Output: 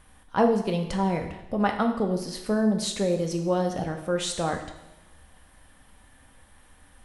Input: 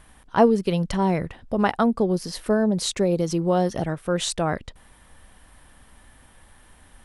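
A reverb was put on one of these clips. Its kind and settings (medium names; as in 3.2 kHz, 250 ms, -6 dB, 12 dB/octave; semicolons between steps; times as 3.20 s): two-slope reverb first 0.89 s, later 3.1 s, from -28 dB, DRR 3.5 dB; trim -4.5 dB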